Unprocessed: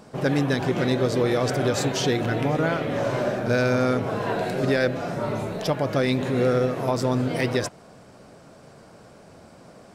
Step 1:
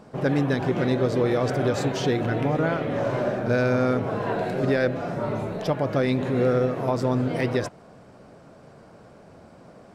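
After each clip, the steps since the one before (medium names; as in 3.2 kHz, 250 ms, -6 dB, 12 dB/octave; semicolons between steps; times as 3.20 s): treble shelf 3.2 kHz -9.5 dB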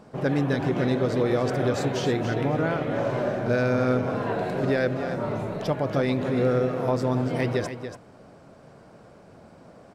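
delay 285 ms -9.5 dB; trim -1.5 dB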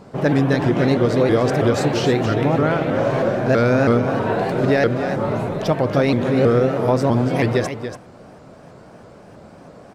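vibrato with a chosen wave saw up 3.1 Hz, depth 160 cents; trim +7 dB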